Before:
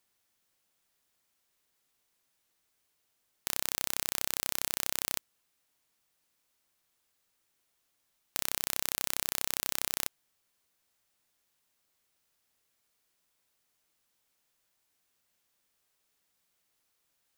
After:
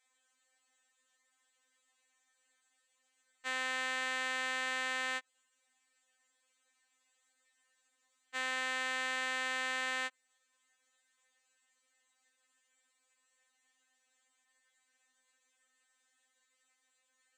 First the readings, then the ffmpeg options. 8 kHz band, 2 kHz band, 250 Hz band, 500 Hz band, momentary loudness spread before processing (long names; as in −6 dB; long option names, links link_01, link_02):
−12.0 dB, +8.5 dB, −1.0 dB, +2.0 dB, 4 LU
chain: -filter_complex "[0:a]highpass=340,equalizer=frequency=340:width_type=q:width=4:gain=-6,equalizer=frequency=1800:width_type=q:width=4:gain=9,equalizer=frequency=5200:width_type=q:width=4:gain=-9,equalizer=frequency=7700:width_type=q:width=4:gain=9,lowpass=frequency=7800:width=0.5412,lowpass=frequency=7800:width=1.3066,acrossover=split=3500[link_01][link_02];[link_02]acompressor=threshold=-49dB:ratio=4:attack=1:release=60[link_03];[link_01][link_03]amix=inputs=2:normalize=0,afftfilt=real='re*3.46*eq(mod(b,12),0)':imag='im*3.46*eq(mod(b,12),0)':win_size=2048:overlap=0.75,volume=4.5dB"